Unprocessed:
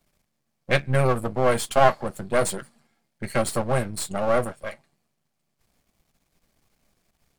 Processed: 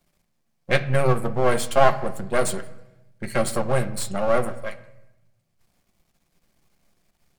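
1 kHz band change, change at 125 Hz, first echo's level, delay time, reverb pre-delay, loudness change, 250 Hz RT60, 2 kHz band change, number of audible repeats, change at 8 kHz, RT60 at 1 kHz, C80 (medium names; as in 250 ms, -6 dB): 0.0 dB, +0.5 dB, no echo, no echo, 6 ms, +0.5 dB, 1.4 s, +0.5 dB, no echo, 0.0 dB, 0.85 s, 17.0 dB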